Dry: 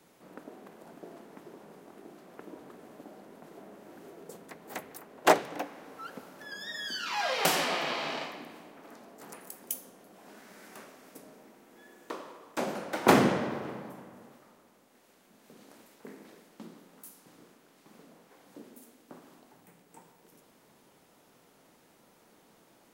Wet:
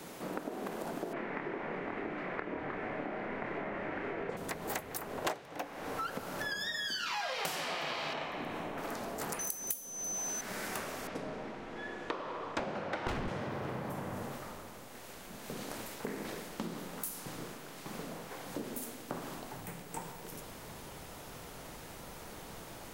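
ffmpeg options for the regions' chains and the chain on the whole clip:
-filter_complex "[0:a]asettb=1/sr,asplit=3[s0][s1][s2];[s0]atrim=end=1.134[s3];[s1]atrim=start=1.13:end=4.37,asetpts=PTS-STARTPTS,afade=t=in:d=0.004:c=qsin,afade=t=out:st=3.236:d=0.004:c=qsin,lowpass=f=2100:t=q:w=3.3,asplit=2[s4][s5];[s5]adelay=27,volume=0.562[s6];[s4][s6]amix=inputs=2:normalize=0,atrim=end_sample=142884[s7];[s2]atrim=start=4.366[s8];[s3][s7]acrossfade=d=0.004:c1=hsin:c2=qsin[s9];[s9][s8]acrossfade=d=0.004:c1=qsin:c2=hsin,asettb=1/sr,asplit=3[s10][s11][s12];[s10]atrim=end=8.134[s13];[s11]atrim=start=8.13:end=8.78,asetpts=PTS-STARTPTS,afade=t=in:d=0.004:c=qsin,afade=t=out:st=0.646:d=0.004:c=qsin,highshelf=f=4600:g=-12,bandreject=f=4700:w=8.4[s14];[s12]atrim=start=8.776[s15];[s13][s14]acrossfade=d=0.004:c1=hsin:c2=qsin[s16];[s16][s15]acrossfade=d=0.004:c1=qsin:c2=hsin,asettb=1/sr,asplit=3[s17][s18][s19];[s17]atrim=end=9.394[s20];[s18]atrim=start=9.39:end=10.41,asetpts=PTS-STARTPTS,afade=t=in:d=0.004:c=qsin,afade=t=out:st=1.016:d=0.004:c=qsin,highshelf=f=5400:g=7.5,aeval=exprs='val(0)+0.00631*sin(2*PI*6100*n/s)':c=same,volume=10,asoftclip=hard,volume=0.1[s21];[s19]atrim=start=10.406[s22];[s20][s21]acrossfade=d=0.004:c1=hsin:c2=qsin[s23];[s23][s22]acrossfade=d=0.004:c1=qsin:c2=hsin,asettb=1/sr,asplit=3[s24][s25][s26];[s24]atrim=end=11.074[s27];[s25]atrim=start=11.07:end=13.28,asetpts=PTS-STARTPTS,afade=t=in:d=0.004:c=qsin,afade=t=out:st=2.206:d=0.004:c=qsin,lowpass=3500,asoftclip=type=hard:threshold=0.0708[s28];[s26]atrim=start=13.276[s29];[s27][s28]acrossfade=d=0.004:c1=hsin:c2=qsin[s30];[s30][s29]acrossfade=d=0.004:c1=qsin:c2=hsin,asubboost=boost=6.5:cutoff=89,acompressor=threshold=0.00355:ratio=10,volume=5.31"

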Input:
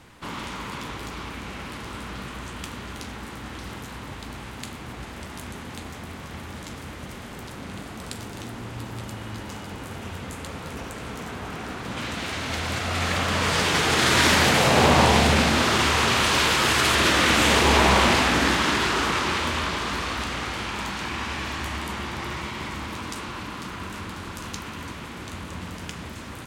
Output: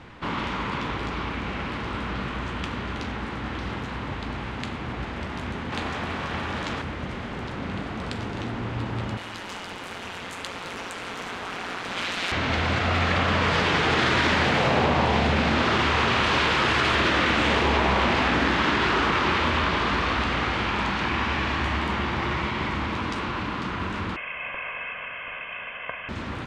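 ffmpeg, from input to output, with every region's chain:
-filter_complex "[0:a]asettb=1/sr,asplit=3[s0][s1][s2];[s0]atrim=end=5.724[s3];[s1]atrim=start=5.72:end=6.82,asetpts=PTS-STARTPTS,afade=t=in:d=0.004:c=qsin,afade=t=out:st=1.096:d=0.004:c=qsin,bandreject=f=2100:w=24,acontrast=48,lowshelf=f=360:g=-7.5[s4];[s2]atrim=start=6.816[s5];[s3][s4]acrossfade=d=0.004:c1=hsin:c2=qsin[s6];[s6][s5]acrossfade=d=0.004:c1=qsin:c2=hsin,asettb=1/sr,asplit=3[s7][s8][s9];[s7]atrim=end=9.174[s10];[s8]atrim=start=9.17:end=12.32,asetpts=PTS-STARTPTS,afade=t=in:d=0.004:c=qsin,afade=t=out:st=3.146:d=0.004:c=qsin,aemphasis=mode=production:type=riaa,tremolo=f=180:d=0.667[s11];[s9]atrim=start=12.316[s12];[s10][s11]acrossfade=d=0.004:c1=hsin:c2=qsin[s13];[s13][s12]acrossfade=d=0.004:c1=qsin:c2=hsin,asettb=1/sr,asplit=3[s14][s15][s16];[s14]atrim=end=24.164[s17];[s15]atrim=start=24.16:end=26.09,asetpts=PTS-STARTPTS,afade=t=in:d=0.004:c=qsin,afade=t=out:st=1.926:d=0.004:c=qsin,highpass=770,aecho=1:1:2:0.68,atrim=end_sample=85113,lowpass=f=3100:t=q:w=0.5098,lowpass=f=3100:t=q:w=0.6013,lowpass=f=3100:t=q:w=0.9,lowpass=f=3100:t=q:w=2.563,afreqshift=-3600[s18];[s16]atrim=start=26.086[s19];[s17][s18]acrossfade=d=0.004:c1=hsin:c2=qsin[s20];[s20][s19]acrossfade=d=0.004:c1=qsin:c2=hsin,lowpass=3300,acompressor=threshold=0.0631:ratio=6,volume=1.88"

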